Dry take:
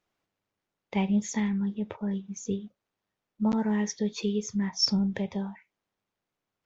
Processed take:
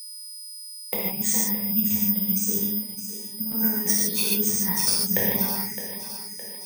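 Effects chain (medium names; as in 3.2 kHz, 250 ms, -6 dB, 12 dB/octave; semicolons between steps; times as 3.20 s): time-frequency box 1.55–2.22 s, 230–2200 Hz -22 dB; compressor with a negative ratio -32 dBFS, ratio -0.5; two-band feedback delay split 310 Hz, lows 357 ms, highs 614 ms, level -11.5 dB; gated-style reverb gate 180 ms flat, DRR -5.5 dB; whistle 5 kHz -41 dBFS; careless resampling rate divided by 3×, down filtered, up zero stuff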